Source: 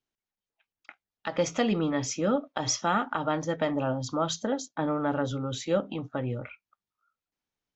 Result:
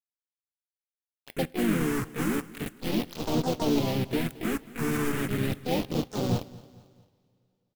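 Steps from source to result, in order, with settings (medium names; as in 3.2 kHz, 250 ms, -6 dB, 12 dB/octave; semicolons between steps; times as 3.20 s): median filter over 41 samples; peaking EQ 590 Hz -3 dB 0.67 oct; de-hum 64.85 Hz, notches 7; waveshaping leveller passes 1; touch-sensitive flanger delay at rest 12 ms, full sweep at -27.5 dBFS; bit crusher 5-bit; phase shifter stages 4, 0.36 Hz, lowest notch 570–1800 Hz; harmony voices -4 st -8 dB, +4 st -11 dB, +7 st -3 dB; on a send: feedback delay 223 ms, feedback 46%, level -20 dB; on the sum: two-slope reverb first 0.26 s, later 3.1 s, from -19 dB, DRR 18 dB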